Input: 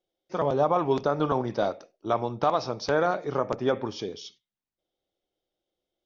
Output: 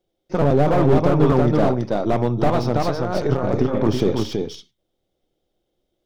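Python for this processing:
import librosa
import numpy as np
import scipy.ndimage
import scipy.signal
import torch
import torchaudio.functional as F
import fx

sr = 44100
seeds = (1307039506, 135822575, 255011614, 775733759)

y = np.where(x < 0.0, 10.0 ** (-3.0 / 20.0) * x, x)
y = fx.over_compress(y, sr, threshold_db=-33.0, ratio=-1.0, at=(2.82, 4.22), fade=0.02)
y = fx.low_shelf(y, sr, hz=340.0, db=12.0)
y = y + 10.0 ** (-4.5 / 20.0) * np.pad(y, (int(328 * sr / 1000.0), 0))[:len(y)]
y = fx.slew_limit(y, sr, full_power_hz=54.0)
y = F.gain(torch.from_numpy(y), 6.0).numpy()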